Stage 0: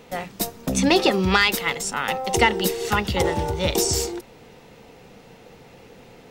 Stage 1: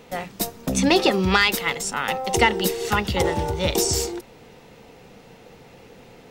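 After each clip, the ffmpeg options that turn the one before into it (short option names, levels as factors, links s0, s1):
-af anull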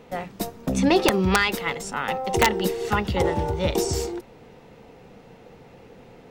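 -af "highshelf=f=2500:g=-9,aeval=exprs='(mod(2.37*val(0)+1,2)-1)/2.37':c=same"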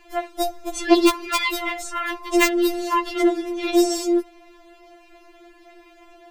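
-af "afftfilt=real='re*4*eq(mod(b,16),0)':imag='im*4*eq(mod(b,16),0)':win_size=2048:overlap=0.75,volume=1.68"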